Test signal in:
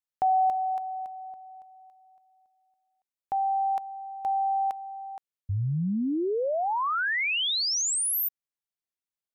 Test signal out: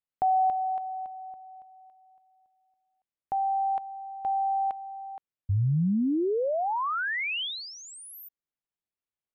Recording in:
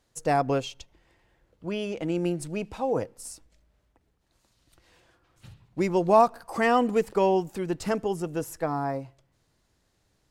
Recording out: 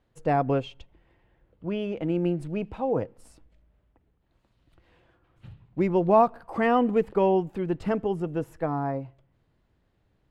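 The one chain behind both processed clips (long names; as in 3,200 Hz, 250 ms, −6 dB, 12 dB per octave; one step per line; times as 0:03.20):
drawn EQ curve 160 Hz 0 dB, 3,100 Hz −7 dB, 5,800 Hz −21 dB
level +3 dB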